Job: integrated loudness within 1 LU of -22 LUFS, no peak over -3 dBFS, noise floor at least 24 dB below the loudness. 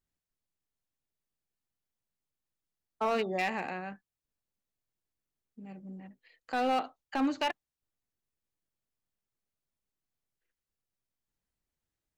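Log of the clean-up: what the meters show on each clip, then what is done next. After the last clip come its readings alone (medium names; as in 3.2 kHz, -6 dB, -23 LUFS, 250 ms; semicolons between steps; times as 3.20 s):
clipped samples 0.5%; clipping level -23.5 dBFS; loudness -32.5 LUFS; peak level -23.5 dBFS; loudness target -22.0 LUFS
-> clip repair -23.5 dBFS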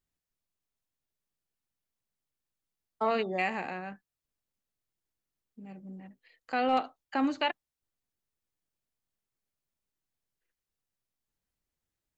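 clipped samples 0.0%; loudness -31.5 LUFS; peak level -15.5 dBFS; loudness target -22.0 LUFS
-> trim +9.5 dB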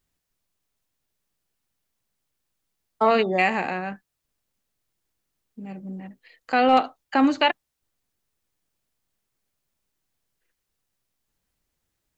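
loudness -22.0 LUFS; peak level -6.0 dBFS; noise floor -80 dBFS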